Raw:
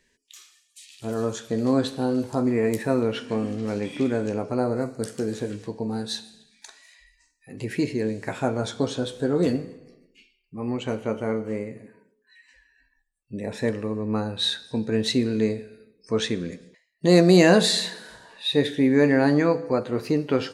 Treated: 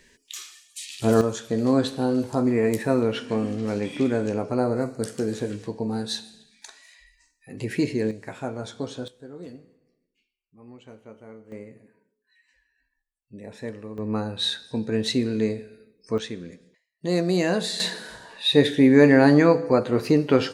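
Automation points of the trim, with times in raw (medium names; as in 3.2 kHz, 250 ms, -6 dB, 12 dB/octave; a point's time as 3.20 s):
+10 dB
from 1.21 s +1 dB
from 8.11 s -6.5 dB
from 9.08 s -18 dB
from 11.52 s -9 dB
from 13.98 s -1 dB
from 16.18 s -7.5 dB
from 17.80 s +4 dB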